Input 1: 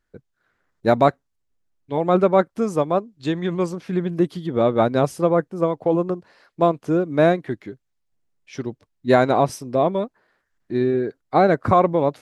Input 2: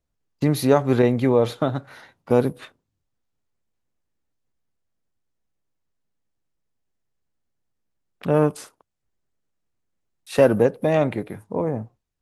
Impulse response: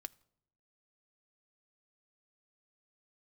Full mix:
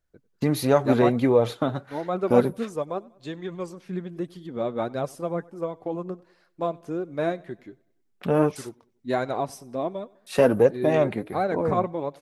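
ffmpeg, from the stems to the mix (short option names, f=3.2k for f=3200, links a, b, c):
-filter_complex "[0:a]highshelf=f=10k:g=7.5,volume=-6dB,asplit=2[a][b];[b]volume=-24dB[c];[1:a]volume=2dB[d];[c]aecho=0:1:96|192|288|384|480|576|672:1|0.47|0.221|0.104|0.0488|0.0229|0.0108[e];[a][d][e]amix=inputs=3:normalize=0,flanger=delay=1.2:depth=4.4:regen=51:speed=1.4:shape=triangular"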